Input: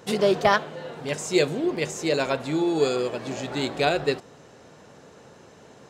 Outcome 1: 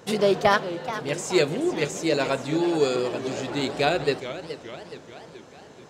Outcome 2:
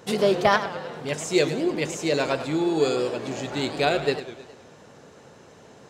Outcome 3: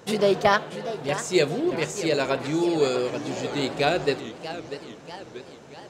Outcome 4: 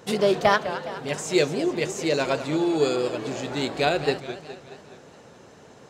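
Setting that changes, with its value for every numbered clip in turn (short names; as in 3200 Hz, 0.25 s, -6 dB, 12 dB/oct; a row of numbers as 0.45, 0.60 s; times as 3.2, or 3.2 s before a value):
warbling echo, time: 0.428, 0.104, 0.635, 0.21 s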